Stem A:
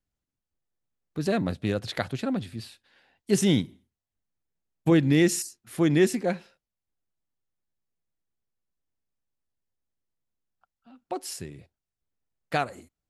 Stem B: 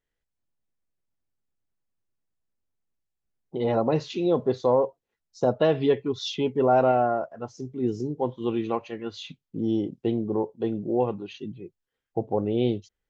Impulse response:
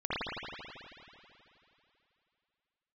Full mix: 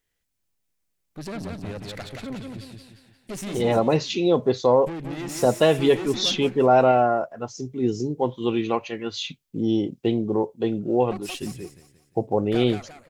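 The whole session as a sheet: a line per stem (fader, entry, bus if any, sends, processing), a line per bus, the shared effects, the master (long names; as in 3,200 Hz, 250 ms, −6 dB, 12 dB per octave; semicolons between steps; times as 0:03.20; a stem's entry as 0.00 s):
0.0 dB, 0.00 s, no send, echo send −4 dB, downward compressor, threshold −21 dBFS, peak gain reduction 6.5 dB; tube saturation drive 30 dB, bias 0.7
+3.0 dB, 0.00 s, no send, no echo send, high-shelf EQ 3,400 Hz +10.5 dB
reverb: not used
echo: repeating echo 176 ms, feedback 42%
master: parametric band 2,300 Hz +3 dB 0.51 octaves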